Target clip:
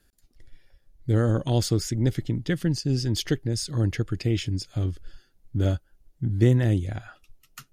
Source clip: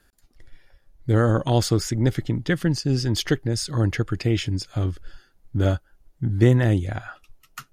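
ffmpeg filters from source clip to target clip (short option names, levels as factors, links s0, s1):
-af "equalizer=f=1100:w=0.74:g=-7.5,volume=0.794"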